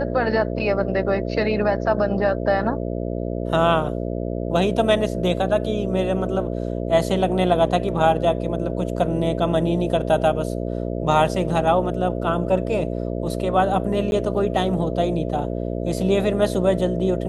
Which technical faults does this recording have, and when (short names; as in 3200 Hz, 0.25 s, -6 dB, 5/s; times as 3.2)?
buzz 60 Hz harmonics 11 -26 dBFS
14.11–14.12 gap 11 ms